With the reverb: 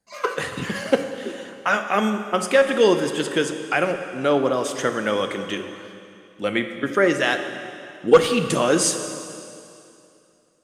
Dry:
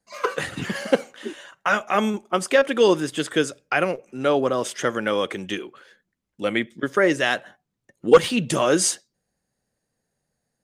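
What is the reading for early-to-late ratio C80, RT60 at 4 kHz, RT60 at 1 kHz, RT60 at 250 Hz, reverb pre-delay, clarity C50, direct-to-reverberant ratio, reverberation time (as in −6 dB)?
9.0 dB, 2.5 s, 2.7 s, 2.6 s, 6 ms, 8.0 dB, 7.0 dB, 2.7 s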